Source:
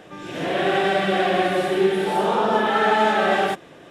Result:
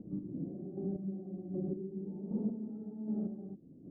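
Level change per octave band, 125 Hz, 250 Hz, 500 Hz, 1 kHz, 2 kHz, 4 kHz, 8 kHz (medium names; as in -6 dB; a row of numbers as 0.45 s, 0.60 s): -8.5 dB, -10.5 dB, -24.5 dB, under -40 dB, under -40 dB, under -40 dB, under -40 dB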